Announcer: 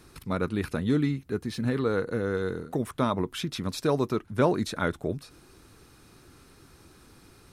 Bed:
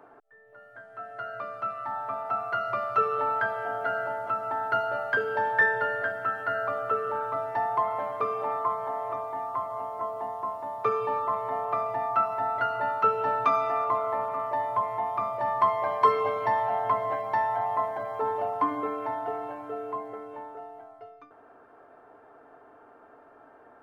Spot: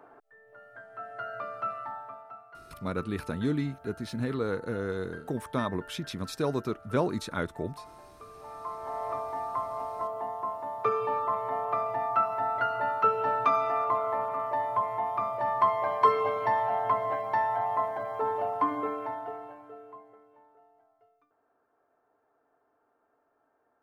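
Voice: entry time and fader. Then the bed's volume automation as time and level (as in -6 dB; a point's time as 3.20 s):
2.55 s, -4.0 dB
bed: 1.75 s -1 dB
2.48 s -21 dB
8.24 s -21 dB
9.04 s -1 dB
18.89 s -1 dB
20.33 s -19 dB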